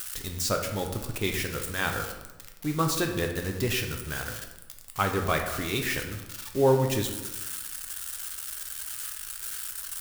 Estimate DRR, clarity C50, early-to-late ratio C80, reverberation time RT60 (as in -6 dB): 3.0 dB, 6.5 dB, 9.0 dB, 1.1 s